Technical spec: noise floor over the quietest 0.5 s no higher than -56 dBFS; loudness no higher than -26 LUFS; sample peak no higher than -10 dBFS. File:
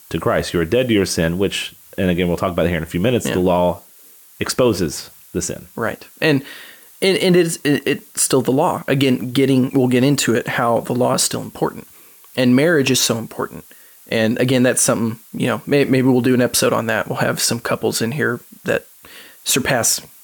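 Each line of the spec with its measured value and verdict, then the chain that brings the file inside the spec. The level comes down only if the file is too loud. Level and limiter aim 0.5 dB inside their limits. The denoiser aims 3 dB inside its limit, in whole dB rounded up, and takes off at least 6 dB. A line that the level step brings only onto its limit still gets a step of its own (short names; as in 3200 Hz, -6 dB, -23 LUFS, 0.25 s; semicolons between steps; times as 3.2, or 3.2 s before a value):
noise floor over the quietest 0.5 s -46 dBFS: fail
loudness -17.5 LUFS: fail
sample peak -5.0 dBFS: fail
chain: denoiser 6 dB, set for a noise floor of -46 dBFS; gain -9 dB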